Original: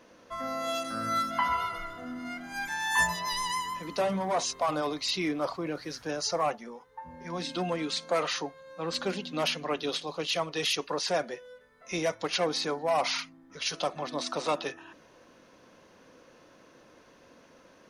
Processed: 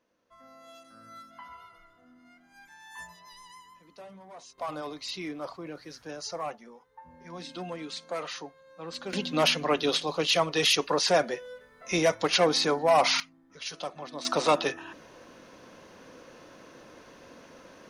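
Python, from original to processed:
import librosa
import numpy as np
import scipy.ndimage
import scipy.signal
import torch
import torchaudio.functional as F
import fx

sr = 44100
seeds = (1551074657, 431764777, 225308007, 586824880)

y = fx.gain(x, sr, db=fx.steps((0.0, -19.0), (4.58, -6.5), (9.13, 5.5), (13.2, -5.5), (14.25, 6.0)))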